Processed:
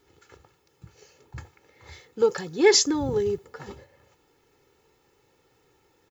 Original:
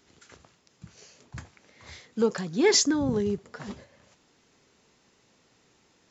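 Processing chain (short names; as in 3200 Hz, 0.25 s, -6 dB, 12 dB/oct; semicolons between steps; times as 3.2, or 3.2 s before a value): comb 2.3 ms, depth 68%; added noise violet -68 dBFS; mismatched tape noise reduction decoder only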